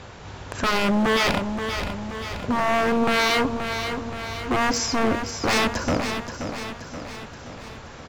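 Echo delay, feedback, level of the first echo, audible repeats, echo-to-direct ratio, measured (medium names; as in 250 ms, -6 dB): 527 ms, 56%, -8.0 dB, 6, -6.5 dB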